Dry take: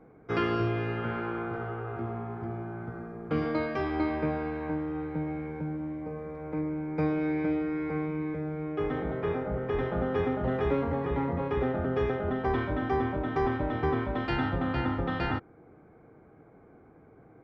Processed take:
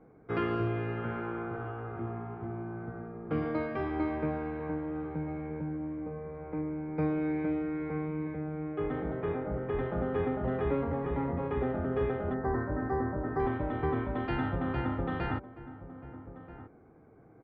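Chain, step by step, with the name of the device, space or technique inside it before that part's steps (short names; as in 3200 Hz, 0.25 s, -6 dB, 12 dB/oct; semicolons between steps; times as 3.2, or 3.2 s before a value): 12.34–13.4 elliptic band-stop 1900–4600 Hz; shout across a valley (air absorption 300 m; outdoor echo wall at 220 m, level -14 dB); gain -2 dB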